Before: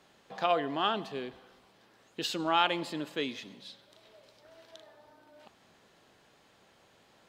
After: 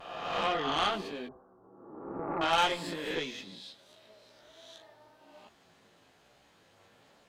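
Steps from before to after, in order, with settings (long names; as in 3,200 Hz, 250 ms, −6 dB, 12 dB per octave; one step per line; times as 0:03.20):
peak hold with a rise ahead of every peak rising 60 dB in 1.33 s
0:01.27–0:02.41: Butterworth low-pass 1,300 Hz 48 dB per octave
pitch vibrato 0.44 Hz 17 cents
multi-voice chorus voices 4, 0.53 Hz, delay 15 ms, depth 4.5 ms
harmonic generator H 6 −19 dB, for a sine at −13 dBFS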